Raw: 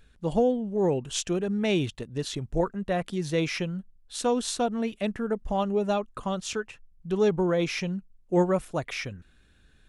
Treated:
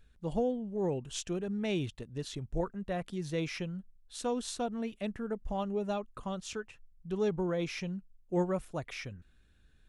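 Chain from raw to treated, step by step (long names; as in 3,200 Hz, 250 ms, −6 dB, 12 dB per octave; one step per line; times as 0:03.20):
low-shelf EQ 130 Hz +5.5 dB
level −8.5 dB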